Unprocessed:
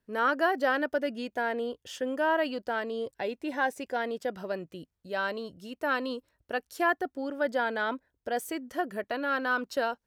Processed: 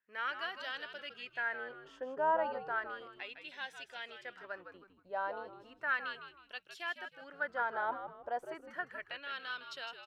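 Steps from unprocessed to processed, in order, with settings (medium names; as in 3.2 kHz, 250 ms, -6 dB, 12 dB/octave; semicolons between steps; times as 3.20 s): LFO band-pass sine 0.34 Hz 840–3500 Hz; frequency-shifting echo 158 ms, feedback 33%, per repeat -95 Hz, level -9 dB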